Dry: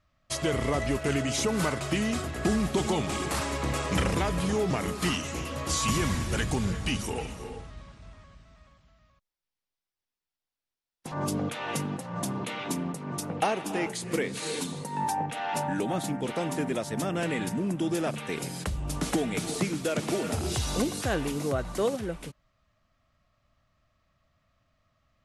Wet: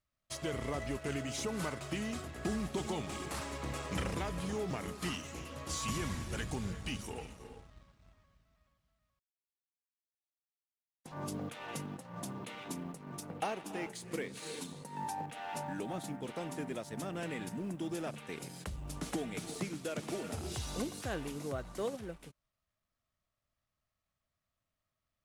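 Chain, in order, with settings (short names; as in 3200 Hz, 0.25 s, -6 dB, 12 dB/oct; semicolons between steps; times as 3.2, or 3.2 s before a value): G.711 law mismatch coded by A; gain -9 dB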